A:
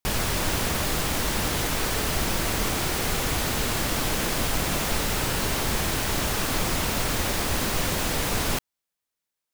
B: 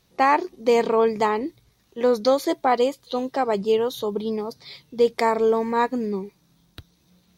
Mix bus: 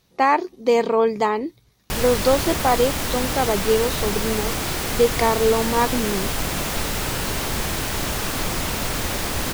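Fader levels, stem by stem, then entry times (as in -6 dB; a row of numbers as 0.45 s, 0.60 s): +1.0 dB, +1.0 dB; 1.85 s, 0.00 s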